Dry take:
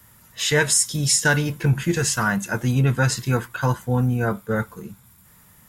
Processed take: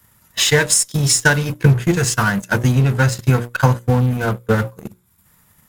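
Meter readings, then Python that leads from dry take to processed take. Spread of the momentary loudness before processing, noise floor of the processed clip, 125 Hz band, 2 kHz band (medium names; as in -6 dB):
8 LU, -57 dBFS, +6.0 dB, +4.5 dB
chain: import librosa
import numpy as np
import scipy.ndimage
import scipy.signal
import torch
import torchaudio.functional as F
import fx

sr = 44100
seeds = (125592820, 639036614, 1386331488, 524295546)

p1 = fx.dynamic_eq(x, sr, hz=110.0, q=3.4, threshold_db=-36.0, ratio=4.0, max_db=5)
p2 = fx.transient(p1, sr, attack_db=11, sustain_db=-8)
p3 = fx.hum_notches(p2, sr, base_hz=60, count=10)
p4 = fx.fuzz(p3, sr, gain_db=28.0, gate_db=-33.0)
p5 = p3 + F.gain(torch.from_numpy(p4), -6.5).numpy()
y = F.gain(torch.from_numpy(p5), -2.5).numpy()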